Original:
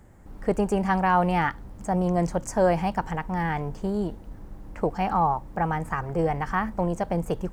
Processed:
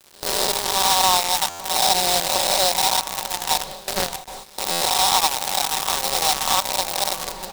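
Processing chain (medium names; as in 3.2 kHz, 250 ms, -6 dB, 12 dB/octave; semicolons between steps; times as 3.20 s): reverse spectral sustain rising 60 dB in 2.22 s; comb 5.3 ms, depth 58%; two-band feedback delay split 540 Hz, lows 135 ms, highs 639 ms, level -11 dB; dynamic bell 740 Hz, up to +6 dB, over -29 dBFS, Q 1.7; sample-rate reducer 4.6 kHz, jitter 20%; ten-band graphic EQ 125 Hz -9 dB, 250 Hz -12 dB, 1 kHz +10 dB, 2 kHz -9 dB, 4 kHz +11 dB, 8 kHz +11 dB; on a send: repeats whose band climbs or falls 684 ms, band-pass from 190 Hz, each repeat 1.4 oct, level -5 dB; on the sum: gate with hold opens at -8 dBFS; level rider; companded quantiser 2-bit; buffer glitch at 1.49/4.71 s, samples 512, times 8; trim -9 dB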